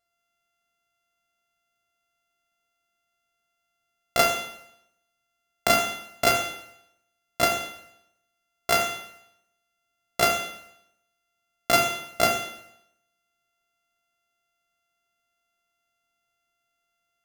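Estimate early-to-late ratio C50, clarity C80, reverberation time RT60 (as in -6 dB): 7.0 dB, 10.0 dB, 0.75 s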